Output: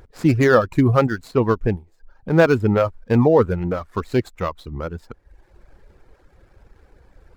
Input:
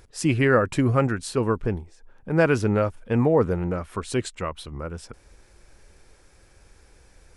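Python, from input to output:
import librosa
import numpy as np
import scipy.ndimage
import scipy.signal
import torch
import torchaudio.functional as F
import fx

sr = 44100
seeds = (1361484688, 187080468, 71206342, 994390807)

y = scipy.ndimage.median_filter(x, 15, mode='constant')
y = fx.dereverb_blind(y, sr, rt60_s=0.8)
y = np.interp(np.arange(len(y)), np.arange(len(y))[::2], y[::2])
y = y * librosa.db_to_amplitude(6.0)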